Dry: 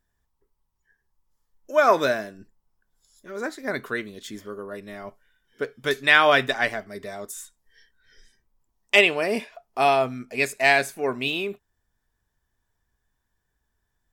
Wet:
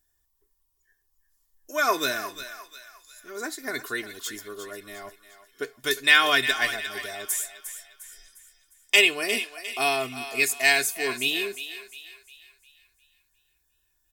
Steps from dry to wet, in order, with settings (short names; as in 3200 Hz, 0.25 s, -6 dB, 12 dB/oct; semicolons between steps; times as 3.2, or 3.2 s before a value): pre-emphasis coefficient 0.8; comb 2.8 ms, depth 58%; dynamic EQ 690 Hz, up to -6 dB, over -44 dBFS, Q 1.7; thinning echo 0.354 s, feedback 45%, high-pass 770 Hz, level -10.5 dB; gain +8 dB